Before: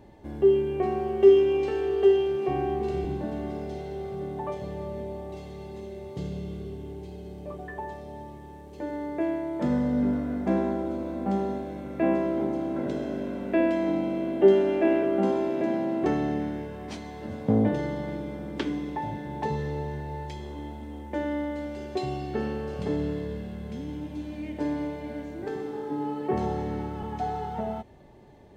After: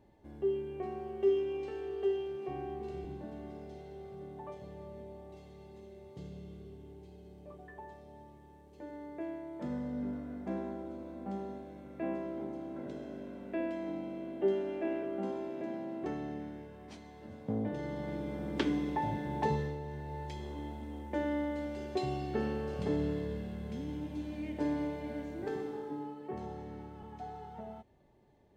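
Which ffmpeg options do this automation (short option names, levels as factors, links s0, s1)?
-af "volume=1.68,afade=t=in:st=17.67:d=0.88:silence=0.281838,afade=t=out:st=19.49:d=0.3:silence=0.375837,afade=t=in:st=19.79:d=0.63:silence=0.501187,afade=t=out:st=25.56:d=0.6:silence=0.316228"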